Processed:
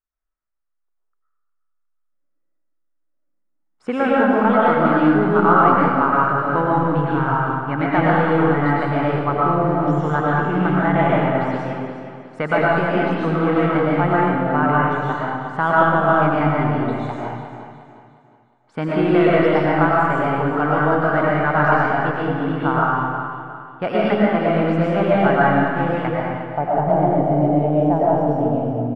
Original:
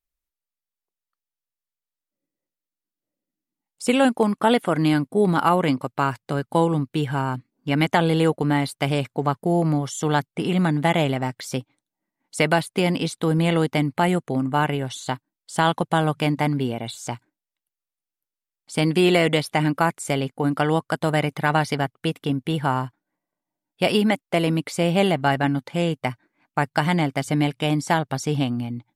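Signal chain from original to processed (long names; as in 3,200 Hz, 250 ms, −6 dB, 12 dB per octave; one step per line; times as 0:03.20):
high-shelf EQ 7,200 Hz +10.5 dB
in parallel at −8 dB: log-companded quantiser 4 bits
on the sum: soft clipping −4 dBFS, distortion −23 dB
low-pass filter sweep 1,400 Hz → 650 Hz, 0:26.12–0:26.66
on a send: repeating echo 359 ms, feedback 39%, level −10.5 dB
on the sum: comb and all-pass reverb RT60 1.4 s, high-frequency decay 0.85×, pre-delay 75 ms, DRR −6 dB
level −6.5 dB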